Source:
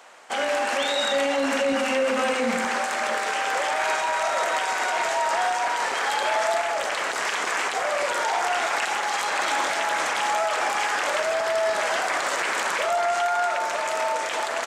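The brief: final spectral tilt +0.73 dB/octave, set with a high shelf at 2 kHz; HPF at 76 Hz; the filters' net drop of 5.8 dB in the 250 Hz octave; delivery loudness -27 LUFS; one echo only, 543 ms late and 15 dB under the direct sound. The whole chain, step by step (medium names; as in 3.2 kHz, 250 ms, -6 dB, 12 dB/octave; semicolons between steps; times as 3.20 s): high-pass 76 Hz; peaking EQ 250 Hz -6.5 dB; treble shelf 2 kHz +3 dB; delay 543 ms -15 dB; trim -4 dB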